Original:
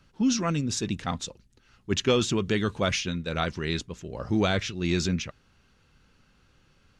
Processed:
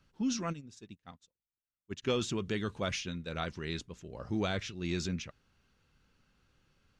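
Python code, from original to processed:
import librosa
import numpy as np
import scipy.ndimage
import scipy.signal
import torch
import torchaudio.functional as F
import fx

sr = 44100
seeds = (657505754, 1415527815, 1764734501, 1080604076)

y = fx.upward_expand(x, sr, threshold_db=-43.0, expansion=2.5, at=(0.52, 2.02), fade=0.02)
y = y * librosa.db_to_amplitude(-8.5)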